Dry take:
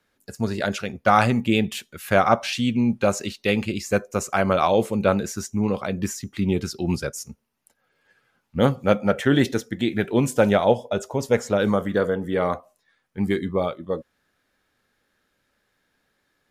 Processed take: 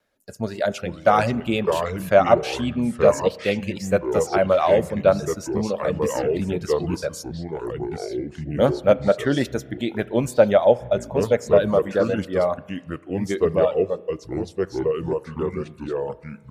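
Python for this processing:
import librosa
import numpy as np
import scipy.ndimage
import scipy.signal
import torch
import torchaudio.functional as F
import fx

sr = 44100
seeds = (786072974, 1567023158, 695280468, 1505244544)

y = fx.peak_eq(x, sr, hz=600.0, db=10.5, octaves=0.43)
y = fx.echo_pitch(y, sr, ms=330, semitones=-4, count=2, db_per_echo=-6.0)
y = fx.dereverb_blind(y, sr, rt60_s=0.52)
y = fx.rev_spring(y, sr, rt60_s=1.3, pass_ms=(33,), chirp_ms=75, drr_db=18.5)
y = fx.wow_flutter(y, sr, seeds[0], rate_hz=2.1, depth_cents=24.0)
y = y * 10.0 ** (-3.0 / 20.0)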